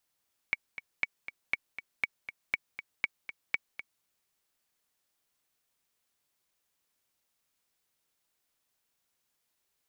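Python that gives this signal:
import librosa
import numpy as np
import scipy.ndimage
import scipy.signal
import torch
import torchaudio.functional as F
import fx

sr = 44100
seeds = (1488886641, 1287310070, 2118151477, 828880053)

y = fx.click_track(sr, bpm=239, beats=2, bars=7, hz=2250.0, accent_db=12.0, level_db=-14.0)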